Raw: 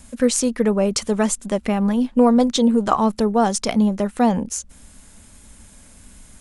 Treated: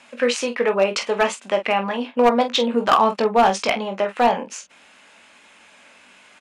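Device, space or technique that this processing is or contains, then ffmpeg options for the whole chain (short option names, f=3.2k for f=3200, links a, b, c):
megaphone: -filter_complex "[0:a]asettb=1/sr,asplit=3[a][b][c];[a]atrim=end=2.744[d];[b]atrim=start=2.74:end=3.73,asetpts=PTS-STARTPTS,afade=t=in:d=0.004:c=qsin,afade=t=out:st=0.986:d=0.004:c=qsin,bass=f=250:g=8,treble=f=4k:g=1[e];[c]atrim=start=3.726[f];[d][e]acrossfade=d=0.004:c1=hsin:c2=qsin[g];[g][f]acrossfade=d=0.004:c1=qsin:c2=hsin,highpass=590,lowpass=3.2k,equalizer=f=2.6k:t=o:w=0.46:g=7.5,aecho=1:1:21|46:0.422|0.299,asoftclip=type=hard:threshold=-14dB,volume=5.5dB"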